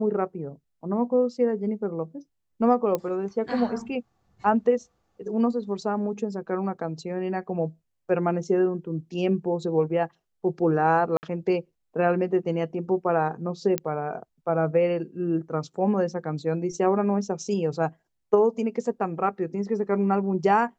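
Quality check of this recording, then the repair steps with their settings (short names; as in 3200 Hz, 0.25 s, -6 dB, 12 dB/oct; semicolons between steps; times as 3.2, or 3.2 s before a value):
2.95 pop -13 dBFS
11.17–11.23 gap 59 ms
13.78 pop -10 dBFS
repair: de-click; interpolate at 11.17, 59 ms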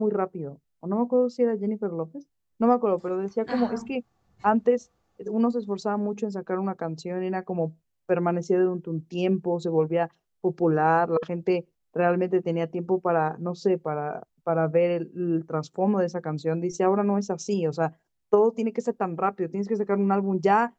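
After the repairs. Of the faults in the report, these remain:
none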